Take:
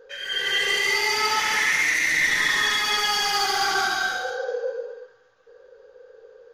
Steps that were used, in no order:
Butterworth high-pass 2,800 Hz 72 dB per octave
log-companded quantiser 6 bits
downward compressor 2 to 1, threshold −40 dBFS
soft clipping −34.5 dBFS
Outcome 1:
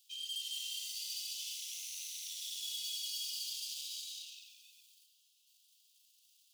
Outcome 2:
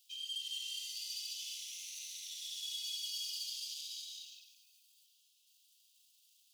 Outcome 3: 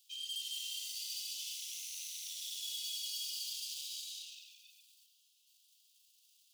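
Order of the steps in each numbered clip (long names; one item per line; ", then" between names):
soft clipping, then downward compressor, then log-companded quantiser, then Butterworth high-pass
log-companded quantiser, then downward compressor, then soft clipping, then Butterworth high-pass
soft clipping, then log-companded quantiser, then downward compressor, then Butterworth high-pass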